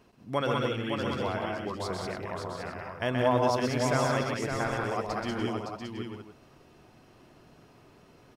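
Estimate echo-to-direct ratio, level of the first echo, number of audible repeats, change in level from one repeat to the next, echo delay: 2.0 dB, -4.0 dB, 7, no steady repeat, 0.127 s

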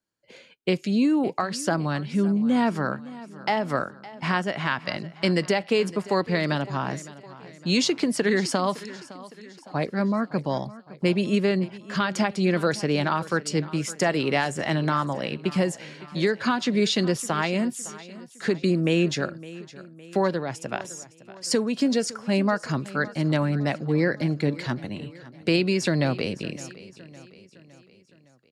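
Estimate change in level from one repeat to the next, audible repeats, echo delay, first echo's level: -6.0 dB, 3, 0.561 s, -18.0 dB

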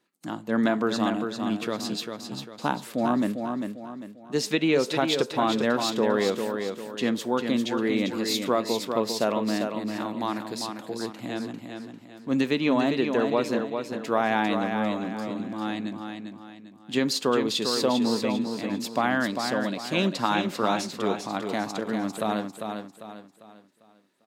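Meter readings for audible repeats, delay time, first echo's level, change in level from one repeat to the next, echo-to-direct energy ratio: 4, 0.398 s, -6.0 dB, -8.5 dB, -5.5 dB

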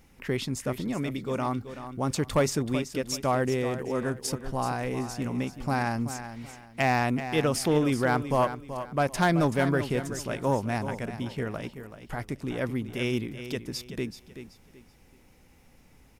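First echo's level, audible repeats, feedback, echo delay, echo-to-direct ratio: -11.0 dB, 3, 29%, 0.38 s, -10.5 dB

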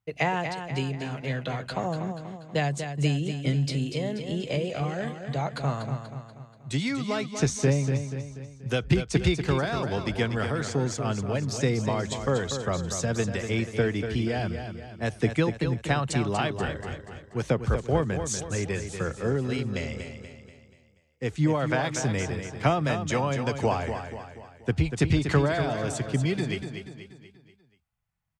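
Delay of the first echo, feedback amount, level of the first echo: 0.241 s, 47%, -8.0 dB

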